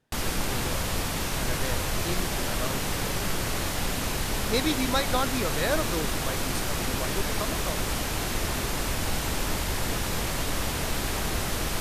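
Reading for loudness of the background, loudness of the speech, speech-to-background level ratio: -29.0 LUFS, -33.0 LUFS, -4.0 dB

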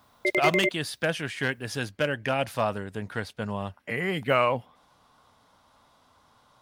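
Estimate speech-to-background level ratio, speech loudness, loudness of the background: -2.0 dB, -28.5 LUFS, -26.5 LUFS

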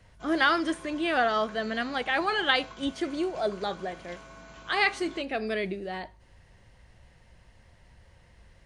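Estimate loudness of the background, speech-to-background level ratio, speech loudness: -48.0 LUFS, 20.0 dB, -28.0 LUFS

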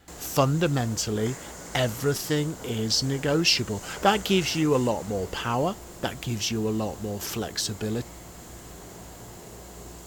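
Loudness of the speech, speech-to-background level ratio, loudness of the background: -26.5 LUFS, 15.0 dB, -41.5 LUFS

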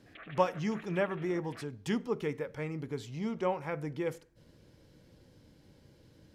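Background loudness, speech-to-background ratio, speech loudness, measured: -51.0 LUFS, 16.0 dB, -35.0 LUFS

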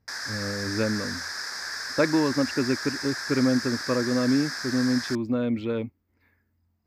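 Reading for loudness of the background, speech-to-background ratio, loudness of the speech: -32.0 LUFS, 5.5 dB, -26.5 LUFS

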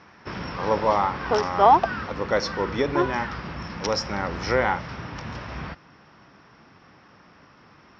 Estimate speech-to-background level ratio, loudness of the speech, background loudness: 0.5 dB, -26.5 LUFS, -27.0 LUFS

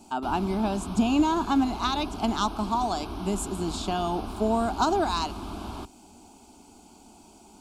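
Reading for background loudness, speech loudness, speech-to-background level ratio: -37.5 LUFS, -27.5 LUFS, 10.0 dB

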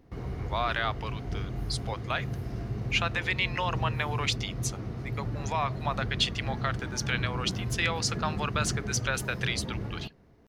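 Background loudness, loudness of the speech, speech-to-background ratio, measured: -35.0 LUFS, -31.5 LUFS, 3.5 dB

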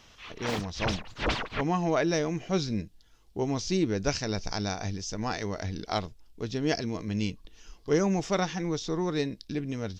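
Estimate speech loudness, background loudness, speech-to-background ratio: -30.5 LUFS, -33.5 LUFS, 3.0 dB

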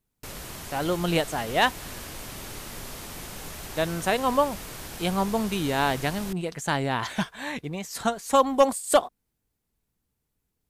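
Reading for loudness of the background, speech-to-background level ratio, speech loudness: -38.0 LUFS, 12.0 dB, -26.0 LUFS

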